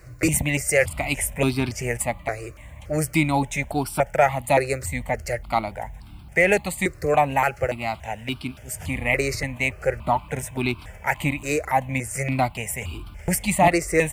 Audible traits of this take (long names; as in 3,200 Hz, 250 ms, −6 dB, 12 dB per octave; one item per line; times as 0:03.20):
a quantiser's noise floor 12 bits, dither triangular
notches that jump at a steady rate 3.5 Hz 890–1,900 Hz